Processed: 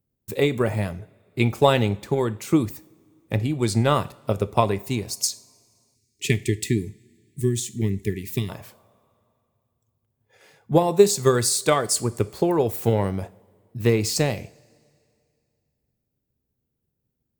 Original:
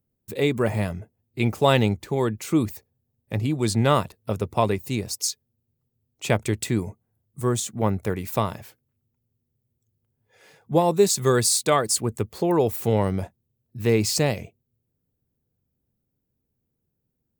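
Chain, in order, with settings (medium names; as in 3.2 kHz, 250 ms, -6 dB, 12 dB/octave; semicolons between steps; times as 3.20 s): transient shaper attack +6 dB, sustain +2 dB; two-slope reverb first 0.44 s, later 2.4 s, from -20 dB, DRR 13.5 dB; time-frequency box 5.95–8.49 s, 440–1700 Hz -26 dB; trim -2 dB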